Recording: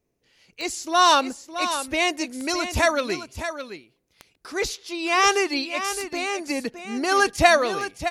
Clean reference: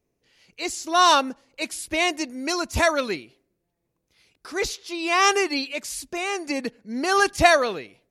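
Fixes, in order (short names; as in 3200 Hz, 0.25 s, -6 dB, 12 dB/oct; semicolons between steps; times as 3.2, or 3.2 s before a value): de-click; inverse comb 0.614 s -10 dB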